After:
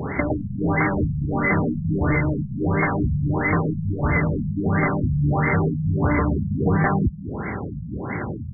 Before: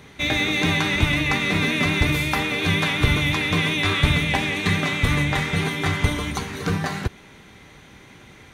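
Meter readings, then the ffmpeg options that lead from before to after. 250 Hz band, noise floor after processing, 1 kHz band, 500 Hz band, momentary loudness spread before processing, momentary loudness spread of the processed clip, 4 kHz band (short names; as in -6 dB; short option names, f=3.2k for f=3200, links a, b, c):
+3.0 dB, -32 dBFS, +1.5 dB, +3.5 dB, 6 LU, 9 LU, under -40 dB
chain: -filter_complex "[0:a]highpass=f=56:w=0.5412,highpass=f=56:w=1.3066,apsyclip=20dB,acompressor=threshold=-15dB:ratio=16,asplit=2[a][b];[b]aecho=0:1:212:0.178[c];[a][c]amix=inputs=2:normalize=0,afftfilt=real='re*lt(b*sr/1024,210*pow(2300/210,0.5+0.5*sin(2*PI*1.5*pts/sr)))':imag='im*lt(b*sr/1024,210*pow(2300/210,0.5+0.5*sin(2*PI*1.5*pts/sr)))':win_size=1024:overlap=0.75"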